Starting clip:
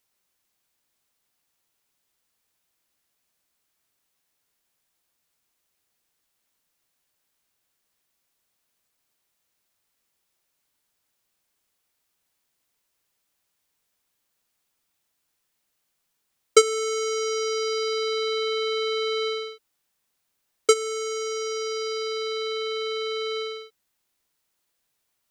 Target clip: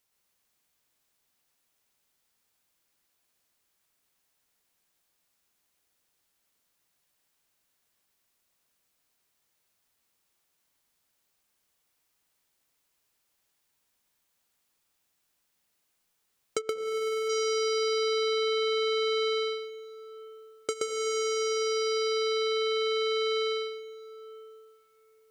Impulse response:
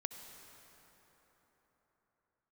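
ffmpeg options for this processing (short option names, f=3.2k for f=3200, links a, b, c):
-filter_complex "[0:a]acompressor=threshold=-29dB:ratio=5,asplit=2[a][b];[1:a]atrim=start_sample=2205,adelay=125[c];[b][c]afir=irnorm=-1:irlink=0,volume=0dB[d];[a][d]amix=inputs=2:normalize=0,asplit=3[e][f][g];[e]afade=t=out:st=16.58:d=0.02[h];[f]adynamicsmooth=sensitivity=2:basefreq=820,afade=t=in:st=16.58:d=0.02,afade=t=out:st=17.28:d=0.02[i];[g]afade=t=in:st=17.28:d=0.02[j];[h][i][j]amix=inputs=3:normalize=0,volume=-2dB"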